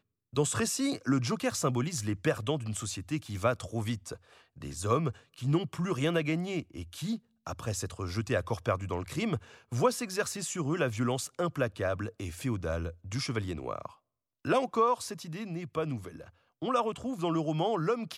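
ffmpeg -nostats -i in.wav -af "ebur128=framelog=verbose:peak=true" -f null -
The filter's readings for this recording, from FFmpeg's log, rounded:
Integrated loudness:
  I:         -32.2 LUFS
  Threshold: -42.5 LUFS
Loudness range:
  LRA:         2.5 LU
  Threshold: -52.9 LUFS
  LRA low:   -34.1 LUFS
  LRA high:  -31.6 LUFS
True peak:
  Peak:      -12.5 dBFS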